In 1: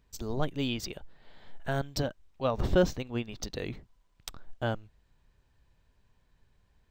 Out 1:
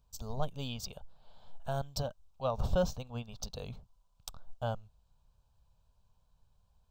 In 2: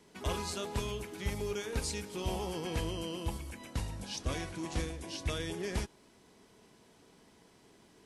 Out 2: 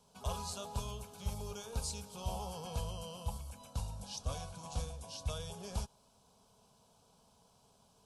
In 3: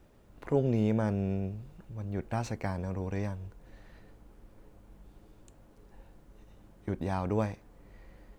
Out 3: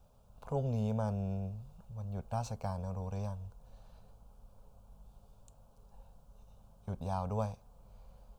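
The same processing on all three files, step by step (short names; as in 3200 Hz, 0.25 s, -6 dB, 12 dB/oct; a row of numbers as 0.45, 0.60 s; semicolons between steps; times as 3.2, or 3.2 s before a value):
fixed phaser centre 800 Hz, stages 4; gain -1.5 dB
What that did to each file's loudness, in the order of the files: -5.0, -4.5, -5.5 LU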